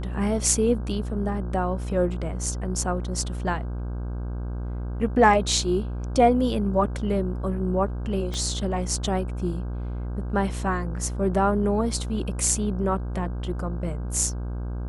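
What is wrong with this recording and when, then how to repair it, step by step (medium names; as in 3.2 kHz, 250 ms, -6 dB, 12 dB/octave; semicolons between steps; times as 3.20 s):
buzz 60 Hz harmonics 27 -30 dBFS
8.34 s: pop -19 dBFS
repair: de-click; de-hum 60 Hz, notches 27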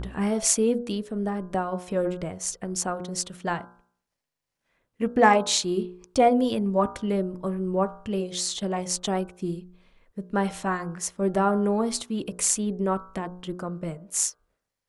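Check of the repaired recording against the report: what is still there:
8.34 s: pop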